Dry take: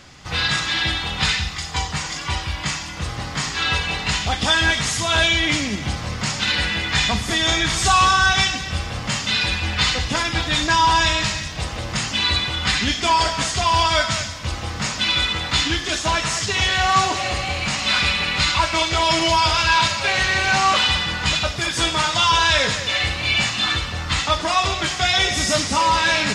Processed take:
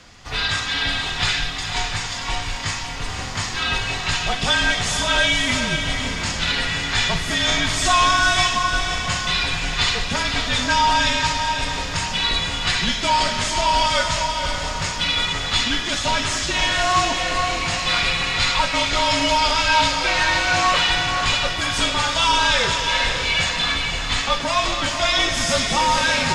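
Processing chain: diffused feedback echo 0.516 s, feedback 41%, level -5.5 dB; frequency shift -46 Hz; gain -1.5 dB

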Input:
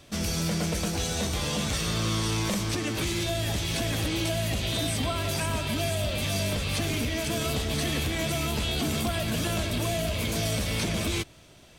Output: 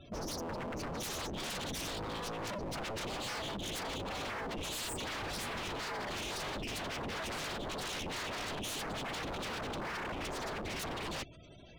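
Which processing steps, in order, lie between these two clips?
spectral gate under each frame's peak -15 dB strong; wavefolder -34.5 dBFS

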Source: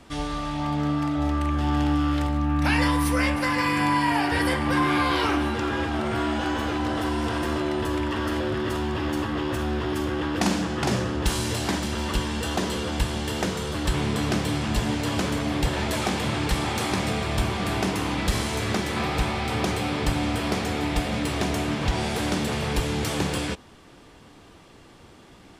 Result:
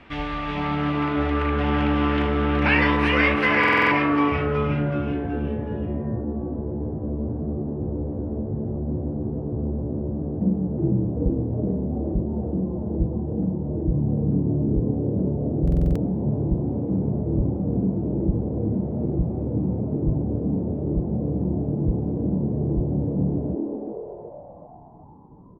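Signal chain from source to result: low-pass sweep 2400 Hz -> 170 Hz, 3.55–4.39; frequency-shifting echo 0.373 s, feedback 46%, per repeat +140 Hz, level -5 dB; stuck buffer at 3.59/15.63, samples 2048, times 6

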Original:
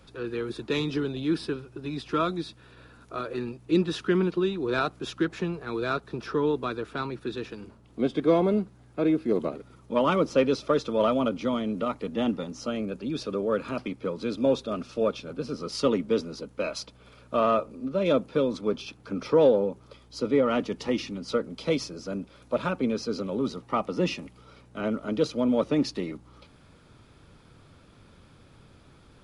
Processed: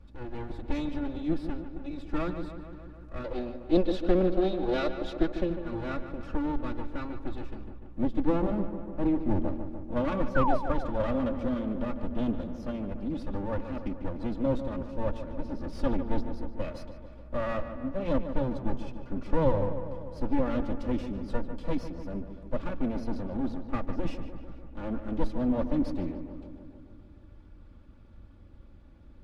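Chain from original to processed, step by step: minimum comb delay 3.5 ms; 3.24–5.5 graphic EQ 125/500/4000 Hz -9/+9/+10 dB; 10.35–10.57 painted sound fall 570–1600 Hz -20 dBFS; RIAA curve playback; darkening echo 0.148 s, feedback 70%, low-pass 3100 Hz, level -10 dB; gain -8 dB

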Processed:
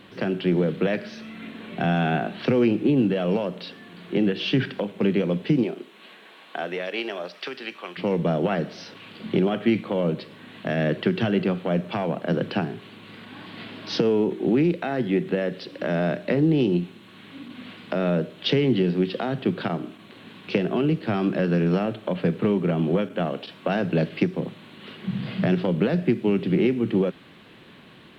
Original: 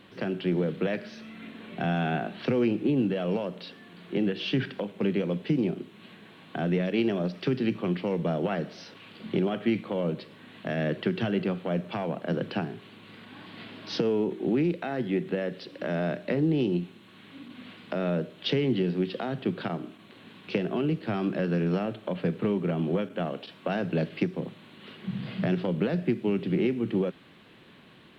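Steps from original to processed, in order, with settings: 5.63–7.97 HPF 360 Hz -> 950 Hz 12 dB/oct; gain +5 dB

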